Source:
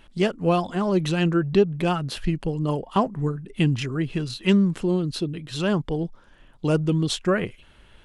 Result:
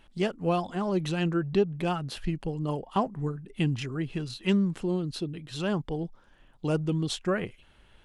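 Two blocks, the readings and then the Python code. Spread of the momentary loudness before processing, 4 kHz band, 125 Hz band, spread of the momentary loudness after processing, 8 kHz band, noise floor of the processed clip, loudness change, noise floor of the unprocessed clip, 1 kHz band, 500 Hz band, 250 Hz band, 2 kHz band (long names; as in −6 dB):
8 LU, −6.0 dB, −6.0 dB, 8 LU, −6.0 dB, −59 dBFS, −6.0 dB, −53 dBFS, −5.0 dB, −6.0 dB, −6.0 dB, −6.0 dB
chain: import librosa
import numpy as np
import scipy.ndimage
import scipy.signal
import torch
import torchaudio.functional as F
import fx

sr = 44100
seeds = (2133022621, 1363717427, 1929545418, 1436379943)

y = fx.peak_eq(x, sr, hz=790.0, db=3.5, octaves=0.24)
y = F.gain(torch.from_numpy(y), -6.0).numpy()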